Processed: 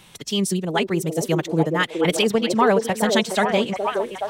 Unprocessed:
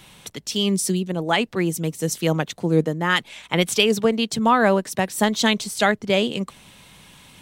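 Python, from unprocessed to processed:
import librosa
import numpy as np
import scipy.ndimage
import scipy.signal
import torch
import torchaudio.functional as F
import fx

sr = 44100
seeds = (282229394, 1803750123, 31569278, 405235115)

y = fx.echo_stepped(x, sr, ms=723, hz=430.0, octaves=0.7, feedback_pct=70, wet_db=-0.5)
y = fx.stretch_vocoder(y, sr, factor=0.58)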